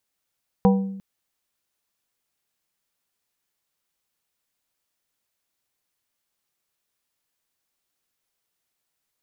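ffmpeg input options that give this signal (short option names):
-f lavfi -i "aevalsrc='0.251*pow(10,-3*t/0.88)*sin(2*PI*194*t)+0.158*pow(10,-3*t/0.463)*sin(2*PI*485*t)+0.1*pow(10,-3*t/0.333)*sin(2*PI*776*t)+0.0631*pow(10,-3*t/0.285)*sin(2*PI*970*t)':d=0.35:s=44100"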